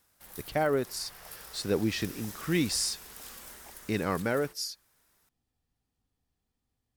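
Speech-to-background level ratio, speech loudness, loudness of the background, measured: 14.0 dB, -31.5 LUFS, -45.5 LUFS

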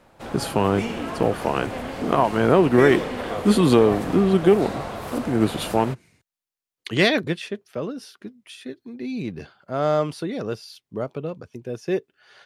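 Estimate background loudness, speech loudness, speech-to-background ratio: -31.0 LUFS, -22.0 LUFS, 9.0 dB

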